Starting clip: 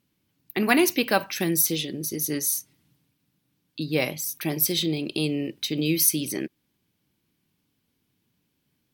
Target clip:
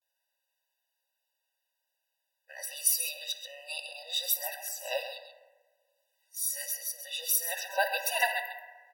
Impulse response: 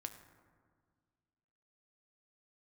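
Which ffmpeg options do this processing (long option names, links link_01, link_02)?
-filter_complex "[0:a]areverse,equalizer=frequency=180:width_type=o:width=1.3:gain=-13.5,aecho=1:1:133:0.335[link_01];[1:a]atrim=start_sample=2205,asetrate=57330,aresample=44100[link_02];[link_01][link_02]afir=irnorm=-1:irlink=0,afftfilt=real='re*eq(mod(floor(b*sr/1024/500),2),1)':imag='im*eq(mod(floor(b*sr/1024/500),2),1)':win_size=1024:overlap=0.75,volume=3.5dB"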